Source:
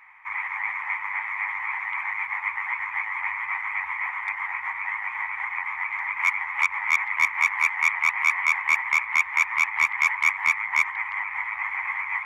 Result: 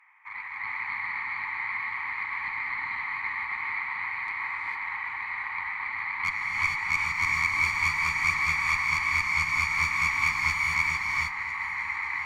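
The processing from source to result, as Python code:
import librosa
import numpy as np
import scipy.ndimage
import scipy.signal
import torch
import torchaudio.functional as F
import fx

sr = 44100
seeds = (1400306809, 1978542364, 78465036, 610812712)

p1 = scipy.signal.sosfilt(scipy.signal.butter(2, 250.0, 'highpass', fs=sr, output='sos'), x)
p2 = fx.peak_eq(p1, sr, hz=530.0, db=-14.5, octaves=0.35)
p3 = fx.cheby_harmonics(p2, sr, harmonics=(2,), levels_db=(-13,), full_scale_db=-8.5)
p4 = p3 + fx.echo_feedback(p3, sr, ms=1005, feedback_pct=60, wet_db=-18, dry=0)
p5 = fx.rev_gated(p4, sr, seeds[0], gate_ms=480, shape='rising', drr_db=-4.0)
y = F.gain(torch.from_numpy(p5), -8.5).numpy()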